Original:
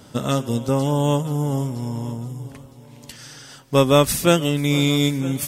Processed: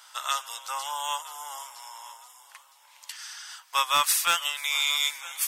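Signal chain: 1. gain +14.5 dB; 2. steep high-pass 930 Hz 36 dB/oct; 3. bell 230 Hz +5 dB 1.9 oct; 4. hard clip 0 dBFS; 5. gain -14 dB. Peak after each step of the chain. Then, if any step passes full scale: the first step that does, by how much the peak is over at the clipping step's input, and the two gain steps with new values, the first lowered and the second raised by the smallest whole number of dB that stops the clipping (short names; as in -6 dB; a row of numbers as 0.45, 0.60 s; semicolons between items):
+11.0, +7.0, +7.5, 0.0, -14.0 dBFS; step 1, 7.5 dB; step 1 +6.5 dB, step 5 -6 dB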